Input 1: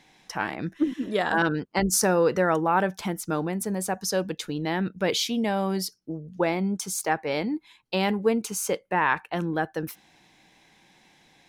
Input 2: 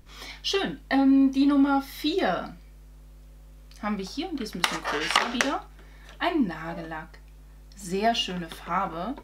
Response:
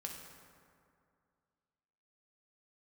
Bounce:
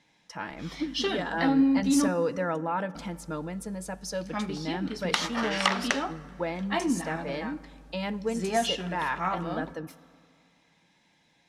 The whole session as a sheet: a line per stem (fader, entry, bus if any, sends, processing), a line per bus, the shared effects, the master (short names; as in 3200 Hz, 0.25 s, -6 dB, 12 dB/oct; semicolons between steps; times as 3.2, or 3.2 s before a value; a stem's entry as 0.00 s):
-7.5 dB, 0.00 s, send -11.5 dB, notch comb 380 Hz
-4.5 dB, 0.50 s, muted 2.08–2.95, send -9 dB, dry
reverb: on, RT60 2.3 s, pre-delay 3 ms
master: LPF 9400 Hz 12 dB/oct